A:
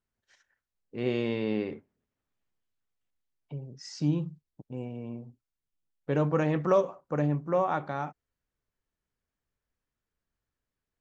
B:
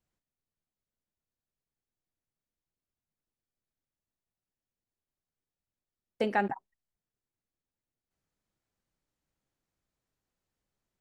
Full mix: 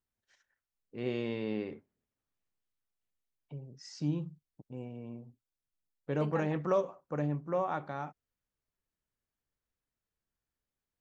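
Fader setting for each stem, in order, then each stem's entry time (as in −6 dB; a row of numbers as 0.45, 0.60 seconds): −5.5, −14.0 decibels; 0.00, 0.00 seconds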